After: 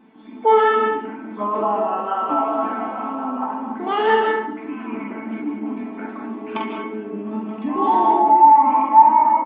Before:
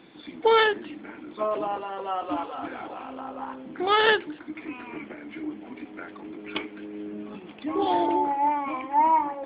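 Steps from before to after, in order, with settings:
high-pass filter 99 Hz
parametric band 810 Hz +4.5 dB 0.24 octaves
double-tracking delay 46 ms −4 dB
tape wow and flutter 62 cents
on a send: feedback echo with a high-pass in the loop 70 ms, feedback 42%, level −12 dB
on the sum: automatic gain control gain up to 7 dB
tuned comb filter 220 Hz, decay 0.17 s, harmonics all, mix 90%
comb and all-pass reverb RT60 0.62 s, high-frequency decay 0.35×, pre-delay 115 ms, DRR 4 dB
in parallel at +0.5 dB: brickwall limiter −20.5 dBFS, peak gain reduction 13 dB
on the sum: graphic EQ with 15 bands 250 Hz +12 dB, 1,000 Hz +9 dB, 4,000 Hz −12 dB
level −2.5 dB

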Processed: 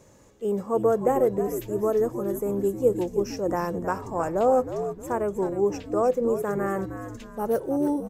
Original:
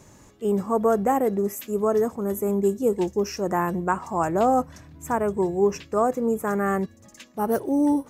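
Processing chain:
parametric band 510 Hz +10 dB 0.41 octaves
echo with shifted repeats 312 ms, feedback 42%, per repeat −81 Hz, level −9.5 dB
level −5.5 dB

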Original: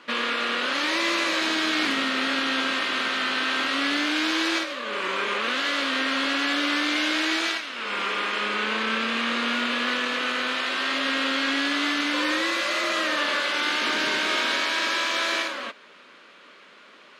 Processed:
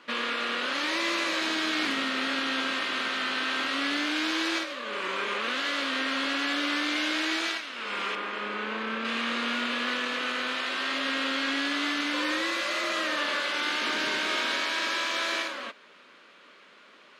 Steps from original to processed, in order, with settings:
0:08.15–0:09.05: high-shelf EQ 2,900 Hz −11.5 dB
level −4 dB

